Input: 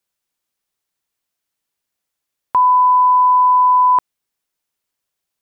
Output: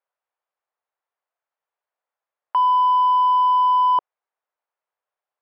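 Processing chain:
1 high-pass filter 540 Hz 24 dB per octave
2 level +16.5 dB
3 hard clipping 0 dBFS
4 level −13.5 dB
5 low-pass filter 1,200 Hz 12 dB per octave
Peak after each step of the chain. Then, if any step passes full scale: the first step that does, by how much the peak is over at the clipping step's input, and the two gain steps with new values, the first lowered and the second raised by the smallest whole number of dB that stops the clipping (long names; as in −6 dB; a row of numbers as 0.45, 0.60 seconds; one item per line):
−7.5, +9.0, 0.0, −13.5, −13.0 dBFS
step 2, 9.0 dB
step 2 +7.5 dB, step 4 −4.5 dB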